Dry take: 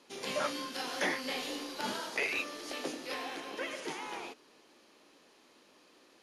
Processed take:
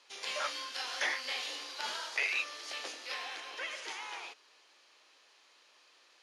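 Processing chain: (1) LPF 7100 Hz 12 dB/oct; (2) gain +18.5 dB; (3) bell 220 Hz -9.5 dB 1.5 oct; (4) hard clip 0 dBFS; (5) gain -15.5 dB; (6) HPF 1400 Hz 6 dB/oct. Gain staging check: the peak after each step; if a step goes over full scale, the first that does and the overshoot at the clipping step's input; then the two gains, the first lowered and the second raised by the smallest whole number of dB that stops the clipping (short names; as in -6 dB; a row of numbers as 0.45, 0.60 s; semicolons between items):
-20.0, -1.5, -1.5, -1.5, -17.0, -19.0 dBFS; no overload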